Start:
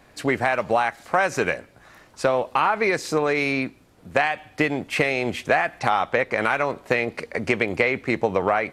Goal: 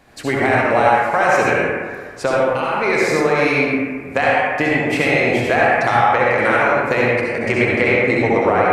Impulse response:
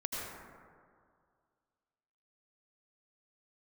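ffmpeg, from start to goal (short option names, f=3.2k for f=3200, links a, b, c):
-filter_complex "[0:a]asettb=1/sr,asplit=3[a][b][c];[a]atrim=end=2.354[d];[b]atrim=start=2.35:end=2.83,asetpts=PTS-STARTPTS,afade=t=in:d=0.004:c=qsin,afade=t=out:st=0.476:d=0.004:c=qsin,equalizer=f=1k:t=o:w=2.5:g=-8.5[e];[c]atrim=start=2.826[f];[d][e]acrossfade=d=0.004:c1=hsin:c2=qsin[g];[g][f]acrossfade=d=0.004:c1=qsin:c2=hsin[h];[1:a]atrim=start_sample=2205,asetrate=57330,aresample=44100[i];[h][i]afir=irnorm=-1:irlink=0,volume=5.5dB"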